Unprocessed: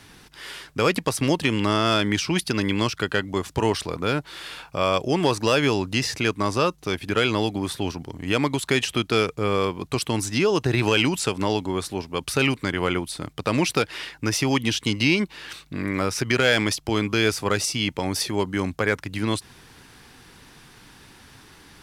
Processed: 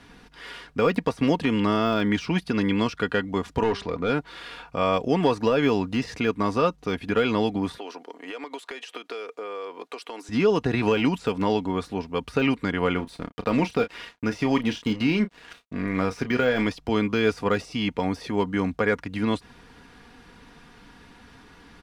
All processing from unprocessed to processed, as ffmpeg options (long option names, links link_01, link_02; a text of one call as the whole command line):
ffmpeg -i in.wav -filter_complex "[0:a]asettb=1/sr,asplit=3[link_01][link_02][link_03];[link_01]atrim=end=3.634[link_04];[link_02]atrim=start=3.63:end=4.1,asetpts=PTS-STARTPTS,afade=type=in:duration=0.004:curve=qsin,afade=type=out:start_time=0.466:duration=0.004:curve=qsin,volume=17.5dB,asoftclip=hard,volume=-17.5dB,lowpass=6500,bandreject=frequency=199:width_type=h:width=4,bandreject=frequency=398:width_type=h:width=4,bandreject=frequency=597:width_type=h:width=4,bandreject=frequency=796:width_type=h:width=4,bandreject=frequency=995:width_type=h:width=4,bandreject=frequency=1194:width_type=h:width=4,bandreject=frequency=1393:width_type=h:width=4,bandreject=frequency=1592:width_type=h:width=4,bandreject=frequency=1791:width_type=h:width=4,bandreject=frequency=1990:width_type=h:width=4[link_05];[link_03]atrim=start=4.096[link_06];[link_04][link_05]acrossfade=duration=0.004:curve1=hsin:curve2=qsin[link_07];[link_07][link_06]acrossfade=duration=0.004:curve1=qsin:curve2=hsin,asettb=1/sr,asplit=3[link_08][link_09][link_10];[link_08]atrim=end=7.784[link_11];[link_09]atrim=start=7.78:end=10.29,asetpts=PTS-STARTPTS,afade=type=in:duration=0.004:curve=qsin,afade=type=out:start_time=2.506:duration=0.004:curve=qsin,highpass=frequency=370:width=0.5412,highpass=frequency=370:width=1.3066,acompressor=threshold=-30dB:ratio=12:attack=3.2:release=140:knee=1:detection=peak[link_12];[link_10]atrim=start=10.286[link_13];[link_11][link_12]acrossfade=duration=0.004:curve1=hsin:curve2=qsin[link_14];[link_14][link_13]acrossfade=duration=0.004:curve1=qsin:curve2=hsin,asettb=1/sr,asplit=3[link_15][link_16][link_17];[link_15]atrim=end=12.954[link_18];[link_16]atrim=start=12.95:end=16.67,asetpts=PTS-STARTPTS,afade=type=in:duration=0.004:curve=qsin,afade=type=out:start_time=3.716:duration=0.004:curve=qsin,aeval=exprs='sgn(val(0))*max(abs(val(0))-0.00891,0)':channel_layout=same,asplit=2[link_19][link_20];[link_20]adelay=32,volume=-12.5dB[link_21];[link_19][link_21]amix=inputs=2:normalize=0,atrim=end_sample=164052[link_22];[link_17]atrim=start=16.666[link_23];[link_18][link_22]acrossfade=duration=0.004:curve1=hsin:curve2=qsin[link_24];[link_24][link_23]acrossfade=duration=0.004:curve1=qsin:curve2=hsin,deesser=0.65,aemphasis=mode=reproduction:type=75kf,aecho=1:1:4.2:0.48" out.wav